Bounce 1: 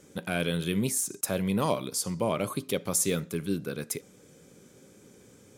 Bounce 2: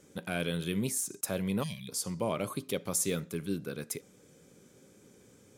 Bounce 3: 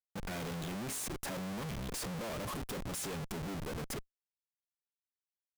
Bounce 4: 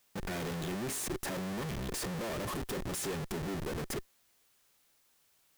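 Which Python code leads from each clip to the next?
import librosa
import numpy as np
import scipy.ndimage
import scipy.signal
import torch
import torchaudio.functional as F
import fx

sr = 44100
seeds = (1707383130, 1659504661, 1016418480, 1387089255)

y1 = fx.spec_box(x, sr, start_s=1.63, length_s=0.26, low_hz=230.0, high_hz=1600.0, gain_db=-27)
y1 = y1 * 10.0 ** (-4.0 / 20.0)
y2 = fx.schmitt(y1, sr, flips_db=-44.0)
y2 = y2 * 10.0 ** (-3.5 / 20.0)
y3 = fx.small_body(y2, sr, hz=(370.0, 1800.0), ring_ms=45, db=7)
y3 = fx.dmg_noise_colour(y3, sr, seeds[0], colour='white', level_db=-72.0)
y3 = y3 * 10.0 ** (2.0 / 20.0)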